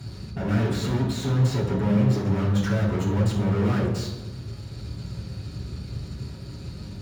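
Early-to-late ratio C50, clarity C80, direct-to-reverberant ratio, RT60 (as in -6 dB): 4.0 dB, 7.5 dB, -9.5 dB, 1.2 s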